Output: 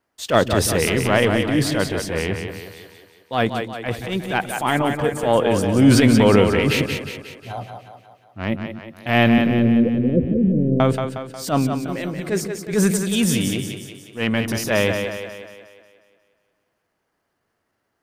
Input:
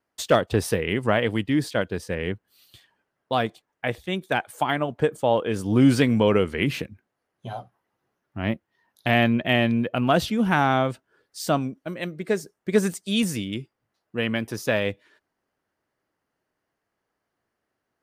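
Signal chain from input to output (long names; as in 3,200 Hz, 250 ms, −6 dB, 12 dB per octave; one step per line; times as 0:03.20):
transient designer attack −11 dB, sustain +5 dB
0:09.38–0:10.80: Butterworth low-pass 550 Hz 96 dB per octave
echo with a time of its own for lows and highs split 310 Hz, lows 124 ms, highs 180 ms, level −6 dB
level +5.5 dB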